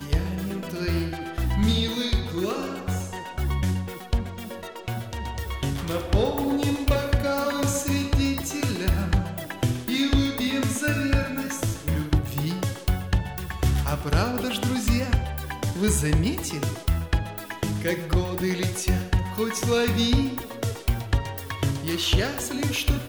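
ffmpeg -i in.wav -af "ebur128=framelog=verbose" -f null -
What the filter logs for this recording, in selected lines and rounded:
Integrated loudness:
  I:         -25.9 LUFS
  Threshold: -36.0 LUFS
Loudness range:
  LRA:         3.1 LU
  Threshold: -45.9 LUFS
  LRA low:   -28.0 LUFS
  LRA high:  -24.9 LUFS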